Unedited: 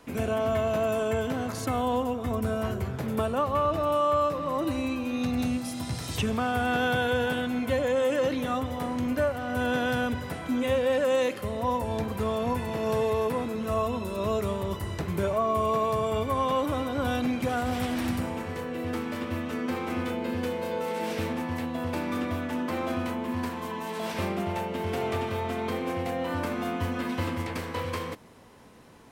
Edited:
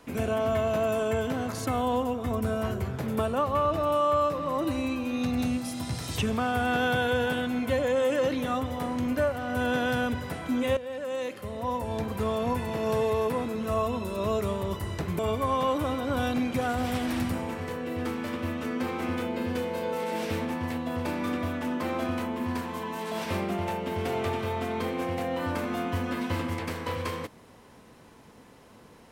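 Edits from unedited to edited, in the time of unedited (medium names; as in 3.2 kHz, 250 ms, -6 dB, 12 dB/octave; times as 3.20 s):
10.77–12.23 s: fade in linear, from -14 dB
15.19–16.07 s: delete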